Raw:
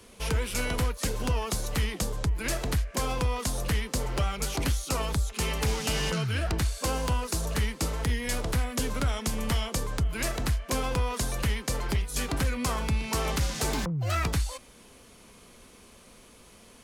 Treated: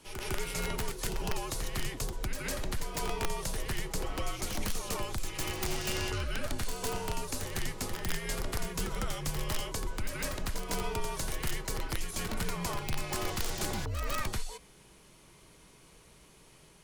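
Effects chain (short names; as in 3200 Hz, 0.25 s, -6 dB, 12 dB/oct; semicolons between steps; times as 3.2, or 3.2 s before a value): frequency shift -71 Hz; wrapped overs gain 18 dB; reverse echo 0.154 s -6 dB; gain -5.5 dB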